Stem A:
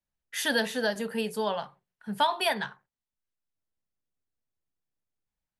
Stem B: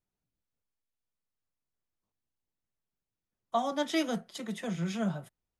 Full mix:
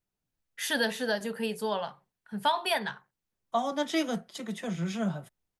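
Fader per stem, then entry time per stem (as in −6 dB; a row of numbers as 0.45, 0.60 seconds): −1.5, +1.0 decibels; 0.25, 0.00 seconds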